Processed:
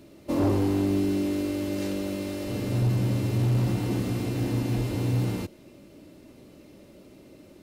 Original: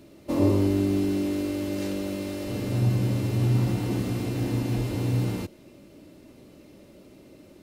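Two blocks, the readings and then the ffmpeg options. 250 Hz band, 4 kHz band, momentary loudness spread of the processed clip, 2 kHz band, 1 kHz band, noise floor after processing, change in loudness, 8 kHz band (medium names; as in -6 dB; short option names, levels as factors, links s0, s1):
-0.5 dB, 0.0 dB, 7 LU, 0.0 dB, +1.0 dB, -52 dBFS, -0.5 dB, 0.0 dB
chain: -af "asoftclip=type=hard:threshold=0.112"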